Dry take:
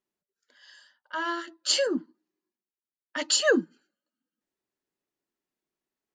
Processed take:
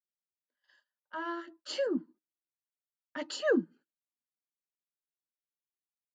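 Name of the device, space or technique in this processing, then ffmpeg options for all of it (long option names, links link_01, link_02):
through cloth: -af "agate=range=-21dB:threshold=-52dB:ratio=16:detection=peak,lowpass=6900,equalizer=frequency=130:width_type=o:width=2:gain=3.5,highshelf=frequency=2400:gain=-14,volume=-4.5dB"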